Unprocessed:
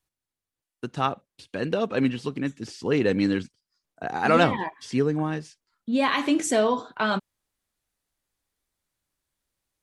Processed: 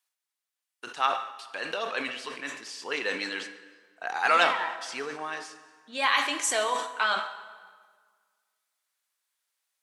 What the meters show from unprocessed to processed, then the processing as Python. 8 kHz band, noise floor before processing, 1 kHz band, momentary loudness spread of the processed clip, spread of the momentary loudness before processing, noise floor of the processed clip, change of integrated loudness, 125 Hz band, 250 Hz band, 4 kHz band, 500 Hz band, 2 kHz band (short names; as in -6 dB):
+2.5 dB, under -85 dBFS, 0.0 dB, 15 LU, 15 LU, under -85 dBFS, -3.5 dB, under -25 dB, -18.0 dB, +3.0 dB, -8.5 dB, +2.5 dB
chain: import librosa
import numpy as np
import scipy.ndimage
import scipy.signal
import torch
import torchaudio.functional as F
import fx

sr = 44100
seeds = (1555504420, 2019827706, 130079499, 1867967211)

y = scipy.signal.sosfilt(scipy.signal.butter(2, 1000.0, 'highpass', fs=sr, output='sos'), x)
y = fx.rev_plate(y, sr, seeds[0], rt60_s=1.7, hf_ratio=0.75, predelay_ms=0, drr_db=9.5)
y = fx.sustainer(y, sr, db_per_s=81.0)
y = y * 10.0 ** (2.0 / 20.0)